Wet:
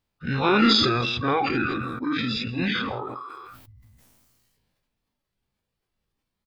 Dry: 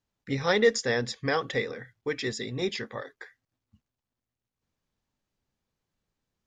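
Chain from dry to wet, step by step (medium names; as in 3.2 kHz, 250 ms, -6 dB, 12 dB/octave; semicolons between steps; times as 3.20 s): every event in the spectrogram widened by 120 ms; formant shift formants -6 st; on a send: delay 161 ms -9.5 dB; on the sum: reverb removal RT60 1.5 s; decay stretcher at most 25 dB/s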